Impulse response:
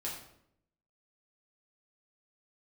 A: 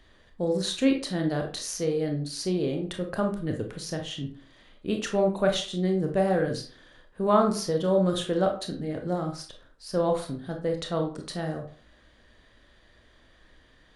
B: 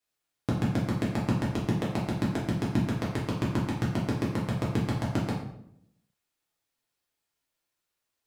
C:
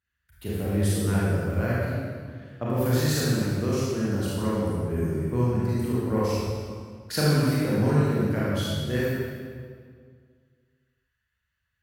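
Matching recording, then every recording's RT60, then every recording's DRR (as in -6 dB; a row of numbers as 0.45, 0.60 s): B; 0.45, 0.70, 2.0 s; 3.0, -5.5, -8.5 dB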